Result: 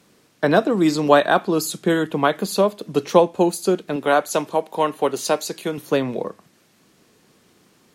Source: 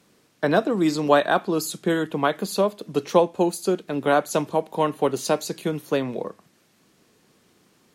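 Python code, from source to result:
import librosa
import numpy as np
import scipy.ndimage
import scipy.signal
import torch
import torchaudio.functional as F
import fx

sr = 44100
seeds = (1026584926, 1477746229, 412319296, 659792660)

y = fx.low_shelf(x, sr, hz=210.0, db=-12.0, at=(3.96, 5.78))
y = y * librosa.db_to_amplitude(3.5)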